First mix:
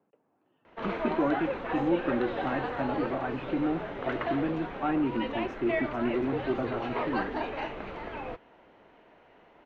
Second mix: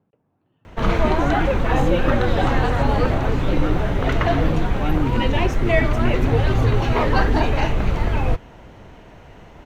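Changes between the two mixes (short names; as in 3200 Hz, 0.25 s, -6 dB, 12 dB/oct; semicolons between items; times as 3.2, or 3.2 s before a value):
background +10.5 dB; master: remove three-band isolator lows -20 dB, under 240 Hz, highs -22 dB, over 3900 Hz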